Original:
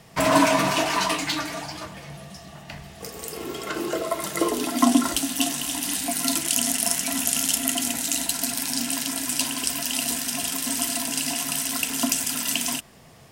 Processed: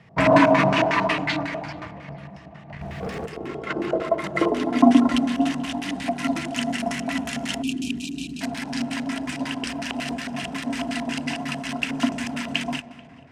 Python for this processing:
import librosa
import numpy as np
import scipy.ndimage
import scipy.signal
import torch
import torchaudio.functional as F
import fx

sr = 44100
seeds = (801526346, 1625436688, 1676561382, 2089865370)

p1 = scipy.signal.sosfilt(scipy.signal.butter(2, 78.0, 'highpass', fs=sr, output='sos'), x)
p2 = fx.bass_treble(p1, sr, bass_db=8, treble_db=11)
p3 = fx.rev_plate(p2, sr, seeds[0], rt60_s=2.5, hf_ratio=0.3, predelay_ms=115, drr_db=12.0)
p4 = fx.leveller(p3, sr, passes=1)
p5 = fx.filter_lfo_lowpass(p4, sr, shape='square', hz=5.5, low_hz=720.0, high_hz=2100.0, q=2.1)
p6 = fx.brickwall_bandstop(p5, sr, low_hz=440.0, high_hz=2300.0, at=(7.62, 8.41))
p7 = p6 + fx.echo_filtered(p6, sr, ms=436, feedback_pct=55, hz=3500.0, wet_db=-24.0, dry=0)
p8 = fx.leveller(p7, sr, passes=3, at=(2.81, 3.26))
y = F.gain(torch.from_numpy(p8), -4.0).numpy()